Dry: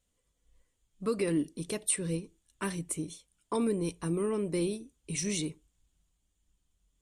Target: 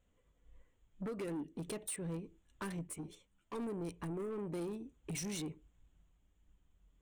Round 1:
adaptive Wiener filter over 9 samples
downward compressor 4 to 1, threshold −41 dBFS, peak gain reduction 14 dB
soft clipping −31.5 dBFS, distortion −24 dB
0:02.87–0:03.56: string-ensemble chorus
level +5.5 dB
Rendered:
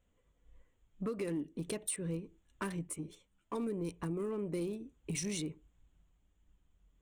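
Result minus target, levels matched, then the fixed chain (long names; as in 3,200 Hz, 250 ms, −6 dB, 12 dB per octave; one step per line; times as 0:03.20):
soft clipping: distortion −12 dB
adaptive Wiener filter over 9 samples
downward compressor 4 to 1, threshold −41 dBFS, peak gain reduction 14 dB
soft clipping −41.5 dBFS, distortion −12 dB
0:02.87–0:03.56: string-ensemble chorus
level +5.5 dB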